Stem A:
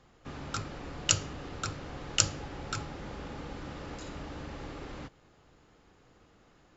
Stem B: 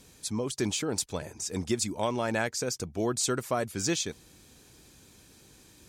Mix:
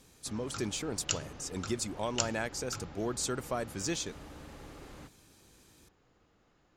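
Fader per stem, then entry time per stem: -7.0, -5.5 dB; 0.00, 0.00 s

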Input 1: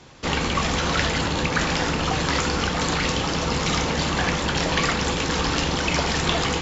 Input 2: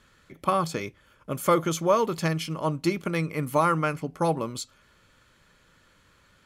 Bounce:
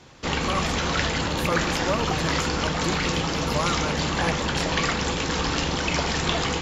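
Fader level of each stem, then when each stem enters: -2.0, -5.5 dB; 0.00, 0.00 s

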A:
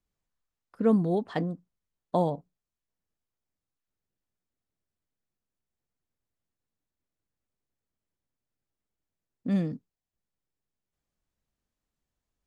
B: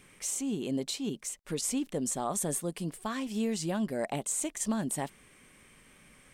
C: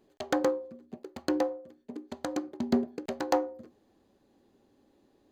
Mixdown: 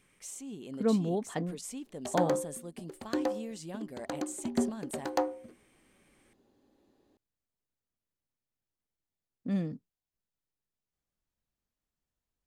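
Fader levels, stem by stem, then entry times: -4.5, -10.0, -3.0 dB; 0.00, 0.00, 1.85 s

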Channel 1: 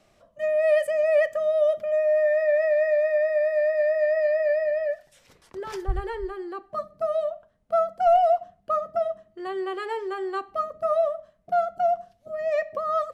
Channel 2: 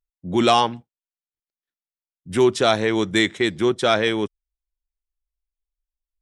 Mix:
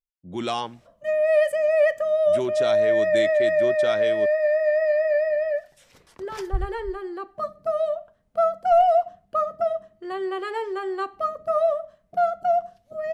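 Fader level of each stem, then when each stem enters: +1.5, -11.0 dB; 0.65, 0.00 s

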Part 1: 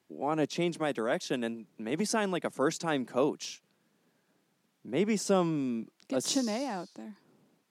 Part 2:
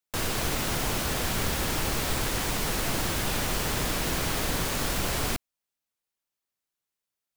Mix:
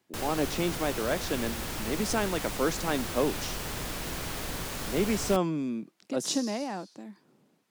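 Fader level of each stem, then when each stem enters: +0.5, -7.0 dB; 0.00, 0.00 s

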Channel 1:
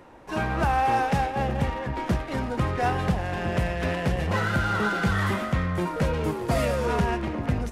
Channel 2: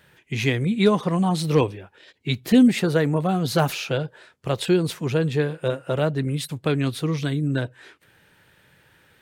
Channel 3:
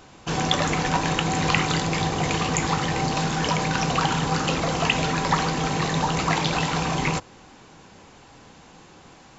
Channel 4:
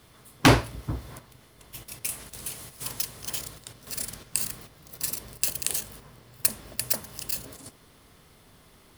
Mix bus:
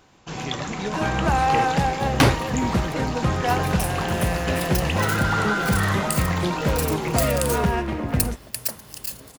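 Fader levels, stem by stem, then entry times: +2.5, -13.0, -7.5, -0.5 dB; 0.65, 0.00, 0.00, 1.75 s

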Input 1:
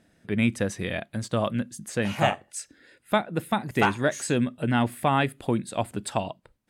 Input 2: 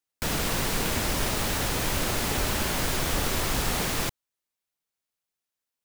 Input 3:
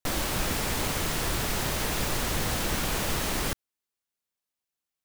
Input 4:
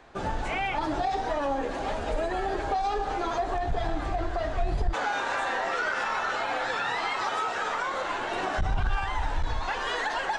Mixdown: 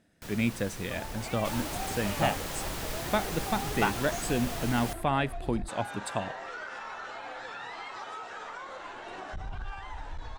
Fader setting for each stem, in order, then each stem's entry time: -5.0, -16.0, -8.5, -11.5 dB; 0.00, 0.00, 1.40, 0.75 s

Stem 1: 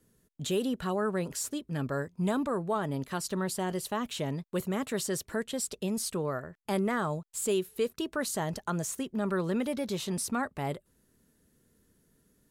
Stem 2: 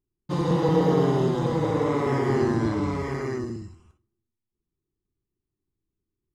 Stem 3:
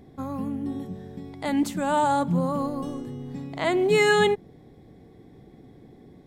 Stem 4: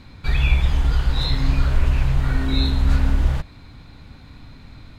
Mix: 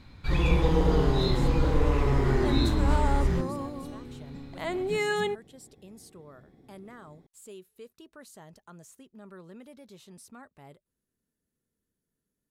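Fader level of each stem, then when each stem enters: -17.5, -5.0, -8.5, -7.5 dB; 0.00, 0.00, 1.00, 0.00 s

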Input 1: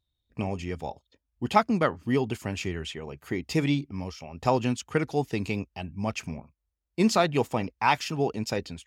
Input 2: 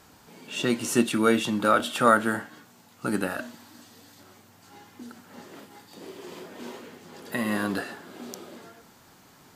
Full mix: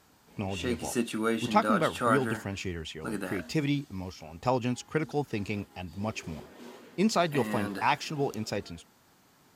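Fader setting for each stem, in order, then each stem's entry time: -3.5, -7.5 dB; 0.00, 0.00 s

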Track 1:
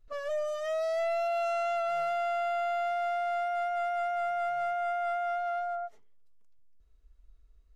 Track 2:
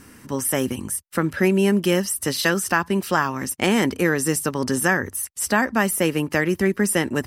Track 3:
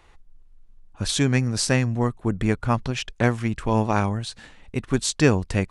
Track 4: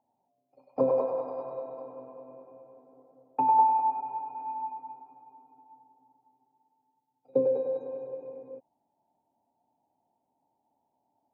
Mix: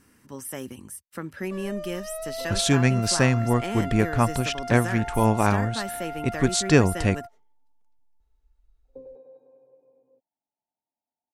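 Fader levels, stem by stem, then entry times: -4.5, -13.0, +0.5, -19.0 dB; 1.40, 0.00, 1.50, 1.60 s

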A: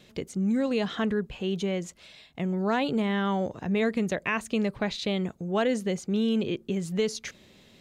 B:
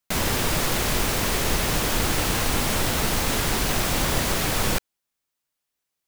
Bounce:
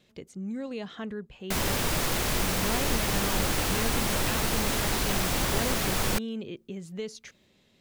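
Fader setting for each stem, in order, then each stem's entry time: -9.0, -4.0 dB; 0.00, 1.40 s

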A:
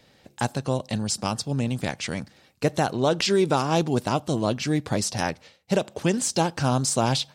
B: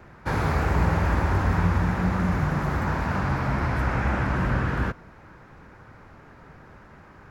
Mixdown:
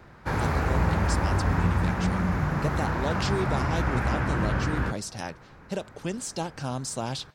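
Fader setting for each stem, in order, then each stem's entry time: -9.0, -2.0 dB; 0.00, 0.00 s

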